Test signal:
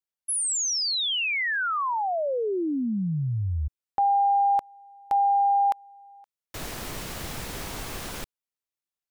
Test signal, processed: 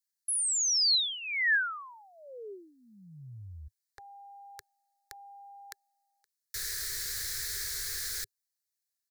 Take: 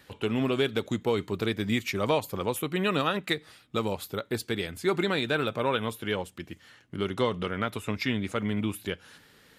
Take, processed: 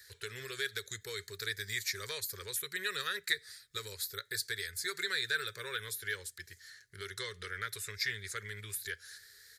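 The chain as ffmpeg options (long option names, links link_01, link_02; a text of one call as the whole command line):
ffmpeg -i in.wav -filter_complex "[0:a]acrossover=split=3700[link_01][link_02];[link_02]acompressor=threshold=-37dB:ratio=4:attack=1:release=60[link_03];[link_01][link_03]amix=inputs=2:normalize=0,firequalizer=gain_entry='entry(100,0);entry(160,-15);entry(280,-29);entry(400,-1);entry(710,-24);entry(1700,12);entry(2800,-7);entry(4100,15)':delay=0.05:min_phase=1,acrossover=split=610[link_04][link_05];[link_04]acompressor=threshold=-35dB:ratio=6:attack=2.7:release=197:knee=6[link_06];[link_06][link_05]amix=inputs=2:normalize=0,volume=-8.5dB" out.wav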